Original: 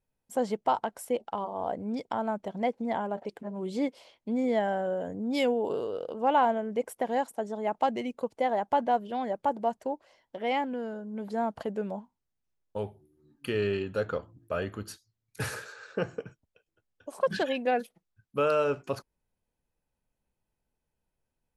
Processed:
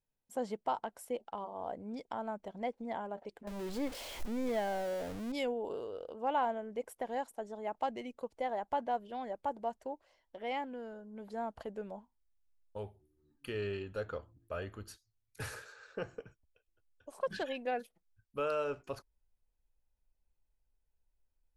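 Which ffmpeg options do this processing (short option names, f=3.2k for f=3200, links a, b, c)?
-filter_complex "[0:a]asettb=1/sr,asplit=3[a][b][c];[a]atrim=end=3.474[d];[b]atrim=start=3.47:end=5.32,asetpts=PTS-STARTPTS,afade=t=in:d=0.004:c=qsin,afade=t=out:st=1.846:d=0.004:c=qsin,aeval=exprs='val(0)+0.5*0.0251*sgn(val(0))':c=same[e];[c]atrim=start=5.316[f];[d][e]acrossfade=d=0.004:c1=hsin:c2=qsin[g];[g][f]acrossfade=d=0.004:c1=qsin:c2=hsin,asubboost=boost=8:cutoff=52,volume=-8dB"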